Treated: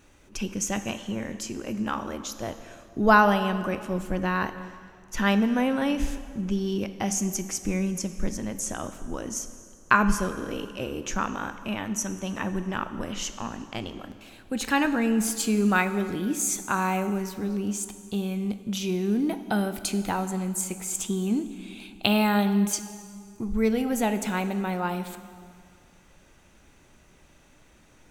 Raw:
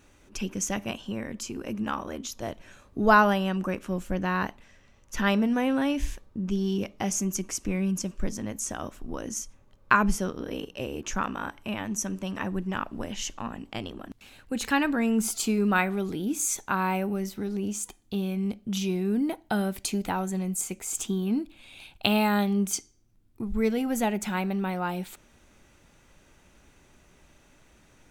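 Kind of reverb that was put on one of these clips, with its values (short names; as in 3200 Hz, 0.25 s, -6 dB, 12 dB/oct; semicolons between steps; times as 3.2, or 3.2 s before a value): plate-style reverb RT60 2.2 s, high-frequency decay 0.8×, DRR 10 dB; gain +1 dB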